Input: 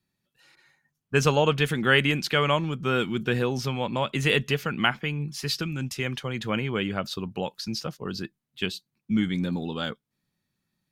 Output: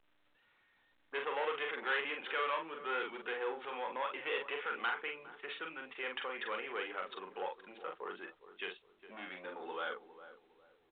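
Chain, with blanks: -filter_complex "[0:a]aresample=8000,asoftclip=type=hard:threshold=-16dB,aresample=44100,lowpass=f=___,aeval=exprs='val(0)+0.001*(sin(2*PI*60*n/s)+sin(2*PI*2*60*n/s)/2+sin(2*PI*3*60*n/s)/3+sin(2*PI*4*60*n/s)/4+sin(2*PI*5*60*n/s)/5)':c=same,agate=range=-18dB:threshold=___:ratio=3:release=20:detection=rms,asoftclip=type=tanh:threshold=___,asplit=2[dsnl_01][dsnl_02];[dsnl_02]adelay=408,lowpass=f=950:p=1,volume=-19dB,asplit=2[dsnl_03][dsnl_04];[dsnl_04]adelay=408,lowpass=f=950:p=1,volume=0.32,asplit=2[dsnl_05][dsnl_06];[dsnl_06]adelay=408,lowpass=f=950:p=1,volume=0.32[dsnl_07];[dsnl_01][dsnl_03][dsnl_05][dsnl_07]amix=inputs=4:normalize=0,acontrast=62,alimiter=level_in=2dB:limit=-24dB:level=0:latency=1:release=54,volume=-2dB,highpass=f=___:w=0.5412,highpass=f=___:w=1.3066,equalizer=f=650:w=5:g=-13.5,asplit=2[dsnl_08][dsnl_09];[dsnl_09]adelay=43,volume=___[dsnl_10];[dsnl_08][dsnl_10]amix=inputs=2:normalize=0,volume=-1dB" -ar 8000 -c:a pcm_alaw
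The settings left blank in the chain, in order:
1800, -51dB, -23.5dB, 490, 490, -4.5dB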